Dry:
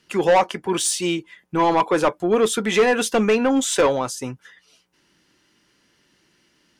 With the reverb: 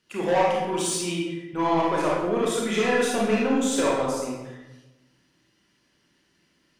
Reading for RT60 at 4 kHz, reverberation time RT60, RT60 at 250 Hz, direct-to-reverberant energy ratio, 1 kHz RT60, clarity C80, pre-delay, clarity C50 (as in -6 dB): 0.70 s, 1.1 s, 1.3 s, -4.5 dB, 1.0 s, 2.5 dB, 29 ms, -0.5 dB